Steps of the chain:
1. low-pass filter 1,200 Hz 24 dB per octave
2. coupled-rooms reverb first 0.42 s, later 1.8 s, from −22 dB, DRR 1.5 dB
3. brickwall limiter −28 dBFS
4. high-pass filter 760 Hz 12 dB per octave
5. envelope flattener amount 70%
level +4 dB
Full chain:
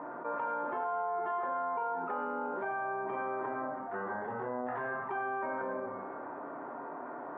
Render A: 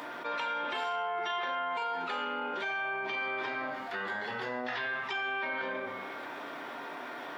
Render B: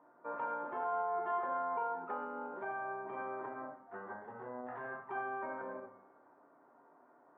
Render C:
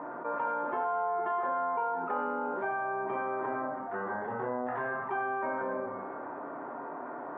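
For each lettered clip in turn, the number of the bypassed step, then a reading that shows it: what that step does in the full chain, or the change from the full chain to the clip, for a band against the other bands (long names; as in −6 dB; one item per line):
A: 1, 2 kHz band +9.5 dB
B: 5, change in crest factor +2.0 dB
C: 3, change in integrated loudness +2.5 LU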